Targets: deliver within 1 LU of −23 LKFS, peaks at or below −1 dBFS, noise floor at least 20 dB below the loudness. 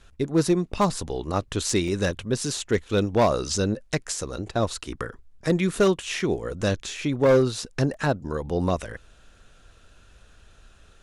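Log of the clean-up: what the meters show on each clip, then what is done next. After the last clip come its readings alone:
share of clipped samples 0.6%; peaks flattened at −13.0 dBFS; number of dropouts 2; longest dropout 2.9 ms; integrated loudness −25.0 LKFS; sample peak −13.0 dBFS; target loudness −23.0 LKFS
→ clipped peaks rebuilt −13 dBFS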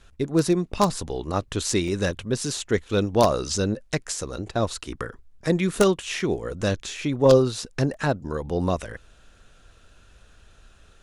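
share of clipped samples 0.0%; number of dropouts 2; longest dropout 2.9 ms
→ repair the gap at 0:01.88/0:07.94, 2.9 ms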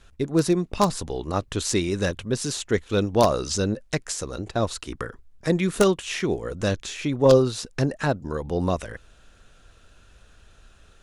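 number of dropouts 0; integrated loudness −24.5 LKFS; sample peak −4.0 dBFS; target loudness −23.0 LKFS
→ level +1.5 dB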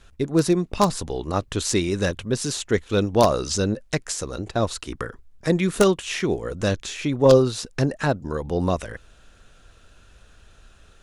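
integrated loudness −23.0 LKFS; sample peak −2.5 dBFS; background noise floor −53 dBFS

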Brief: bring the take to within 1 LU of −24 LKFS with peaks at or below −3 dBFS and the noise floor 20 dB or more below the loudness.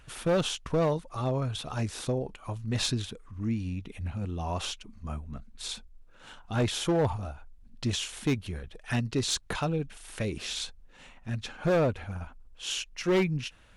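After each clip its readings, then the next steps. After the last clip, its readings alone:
share of clipped samples 1.1%; peaks flattened at −20.5 dBFS; integrated loudness −31.5 LKFS; sample peak −20.5 dBFS; target loudness −24.0 LKFS
→ clipped peaks rebuilt −20.5 dBFS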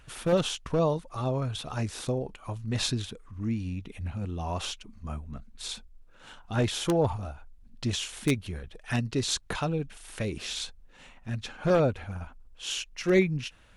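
share of clipped samples 0.0%; integrated loudness −30.5 LKFS; sample peak −11.5 dBFS; target loudness −24.0 LKFS
→ level +6.5 dB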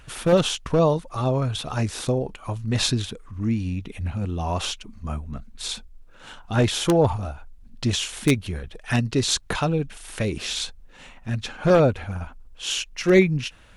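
integrated loudness −24.0 LKFS; sample peak −5.0 dBFS; background noise floor −48 dBFS

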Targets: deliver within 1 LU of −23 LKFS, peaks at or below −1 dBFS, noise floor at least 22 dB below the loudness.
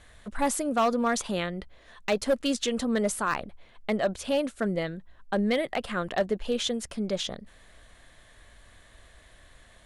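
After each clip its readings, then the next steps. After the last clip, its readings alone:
share of clipped samples 0.6%; peaks flattened at −18.0 dBFS; integrated loudness −28.5 LKFS; sample peak −18.0 dBFS; target loudness −23.0 LKFS
→ clipped peaks rebuilt −18 dBFS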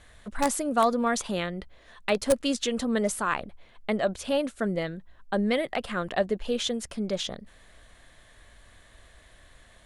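share of clipped samples 0.0%; integrated loudness −28.5 LKFS; sample peak −9.0 dBFS; target loudness −23.0 LKFS
→ level +5.5 dB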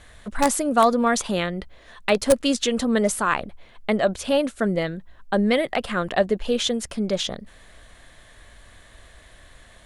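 integrated loudness −23.0 LKFS; sample peak −3.5 dBFS; background noise floor −51 dBFS

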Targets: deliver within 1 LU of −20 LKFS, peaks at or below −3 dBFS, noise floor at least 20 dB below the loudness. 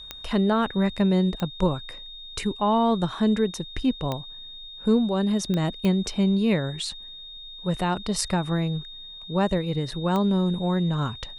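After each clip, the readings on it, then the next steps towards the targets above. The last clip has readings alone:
number of clicks 6; interfering tone 3,700 Hz; level of the tone −39 dBFS; integrated loudness −25.0 LKFS; sample peak −8.5 dBFS; target loudness −20.0 LKFS
→ click removal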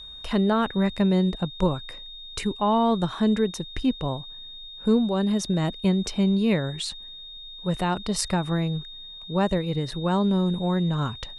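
number of clicks 0; interfering tone 3,700 Hz; level of the tone −39 dBFS
→ notch filter 3,700 Hz, Q 30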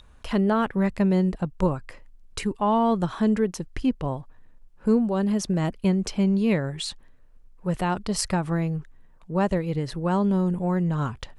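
interfering tone none found; integrated loudness −25.0 LKFS; sample peak −8.5 dBFS; target loudness −20.0 LKFS
→ level +5 dB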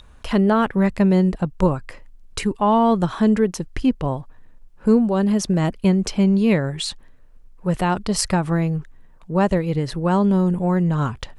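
integrated loudness −20.0 LKFS; sample peak −3.5 dBFS; background noise floor −47 dBFS

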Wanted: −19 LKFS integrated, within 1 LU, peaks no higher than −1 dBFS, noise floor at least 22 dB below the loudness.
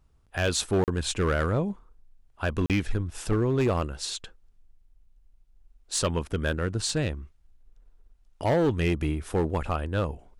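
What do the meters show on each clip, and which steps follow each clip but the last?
share of clipped samples 1.3%; peaks flattened at −18.5 dBFS; number of dropouts 2; longest dropout 38 ms; integrated loudness −28.0 LKFS; sample peak −18.5 dBFS; target loudness −19.0 LKFS
→ clipped peaks rebuilt −18.5 dBFS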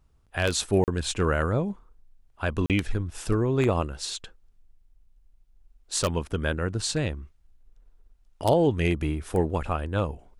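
share of clipped samples 0.0%; number of dropouts 2; longest dropout 38 ms
→ repair the gap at 0:00.84/0:02.66, 38 ms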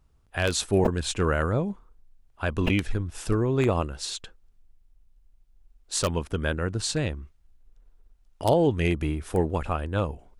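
number of dropouts 0; integrated loudness −27.0 LKFS; sample peak −9.5 dBFS; target loudness −19.0 LKFS
→ level +8 dB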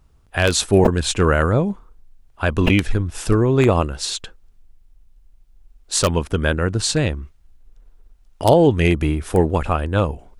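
integrated loudness −19.0 LKFS; sample peak −1.5 dBFS; background noise floor −54 dBFS

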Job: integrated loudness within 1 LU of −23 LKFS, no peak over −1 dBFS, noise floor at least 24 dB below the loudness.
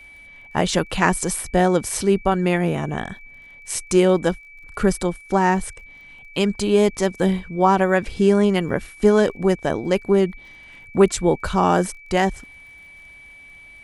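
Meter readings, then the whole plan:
crackle rate 30 per second; interfering tone 2,300 Hz; level of the tone −42 dBFS; integrated loudness −20.0 LKFS; sample peak −2.0 dBFS; target loudness −23.0 LKFS
→ click removal
notch filter 2,300 Hz, Q 30
level −3 dB

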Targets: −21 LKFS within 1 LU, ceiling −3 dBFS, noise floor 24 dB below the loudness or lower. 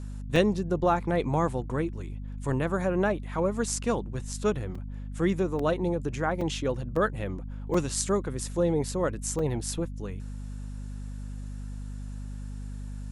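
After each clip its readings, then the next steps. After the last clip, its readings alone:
number of dropouts 7; longest dropout 3.8 ms; mains hum 50 Hz; hum harmonics up to 250 Hz; level of the hum −34 dBFS; integrated loudness −29.0 LKFS; sample peak −9.0 dBFS; target loudness −21.0 LKFS
→ repair the gap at 0:00.36/0:04.75/0:05.59/0:06.41/0:06.96/0:07.74/0:09.39, 3.8 ms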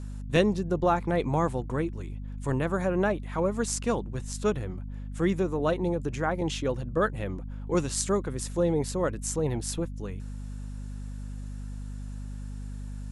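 number of dropouts 0; mains hum 50 Hz; hum harmonics up to 250 Hz; level of the hum −34 dBFS
→ hum removal 50 Hz, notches 5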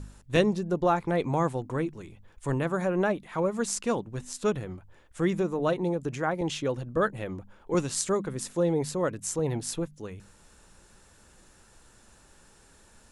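mains hum none found; integrated loudness −29.0 LKFS; sample peak −9.0 dBFS; target loudness −21.0 LKFS
→ level +8 dB
brickwall limiter −3 dBFS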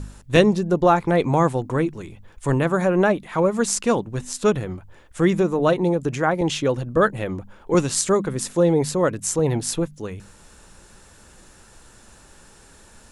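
integrated loudness −21.0 LKFS; sample peak −3.0 dBFS; background noise floor −50 dBFS

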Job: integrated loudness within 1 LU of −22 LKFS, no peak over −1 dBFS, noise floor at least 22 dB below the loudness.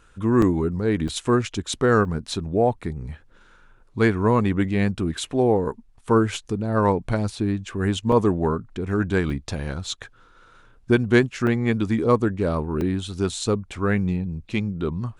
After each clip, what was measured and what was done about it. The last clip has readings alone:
number of dropouts 7; longest dropout 2.7 ms; integrated loudness −23.0 LKFS; sample peak −3.5 dBFS; target loudness −22.0 LKFS
→ repair the gap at 0:00.42/0:01.08/0:02.05/0:08.12/0:09.30/0:11.47/0:12.81, 2.7 ms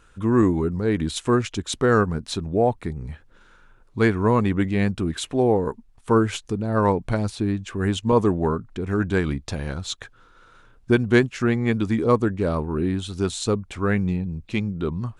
number of dropouts 0; integrated loudness −23.0 LKFS; sample peak −3.5 dBFS; target loudness −22.0 LKFS
→ level +1 dB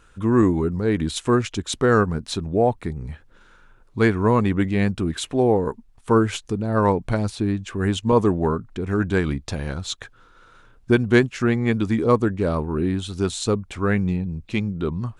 integrated loudness −22.0 LKFS; sample peak −2.5 dBFS; background noise floor −53 dBFS

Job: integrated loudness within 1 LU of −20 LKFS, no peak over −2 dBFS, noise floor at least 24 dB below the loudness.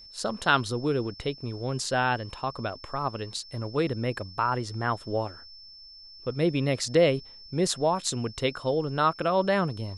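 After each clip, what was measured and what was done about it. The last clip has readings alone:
interfering tone 5,300 Hz; level of the tone −46 dBFS; integrated loudness −28.0 LKFS; sample peak −8.5 dBFS; target loudness −20.0 LKFS
→ notch filter 5,300 Hz, Q 30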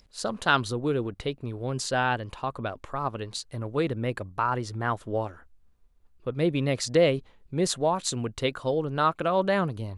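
interfering tone none found; integrated loudness −28.0 LKFS; sample peak −8.5 dBFS; target loudness −20.0 LKFS
→ level +8 dB
brickwall limiter −2 dBFS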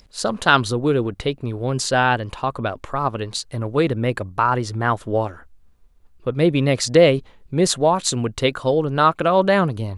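integrated loudness −20.0 LKFS; sample peak −2.0 dBFS; background noise floor −51 dBFS

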